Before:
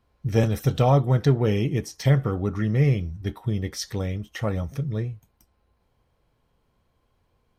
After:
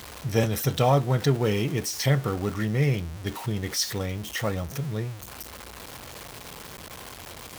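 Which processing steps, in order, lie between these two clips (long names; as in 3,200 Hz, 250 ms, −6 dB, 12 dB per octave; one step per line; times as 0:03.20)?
converter with a step at zero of −34 dBFS
high-pass filter 45 Hz
spectral tilt +1.5 dB per octave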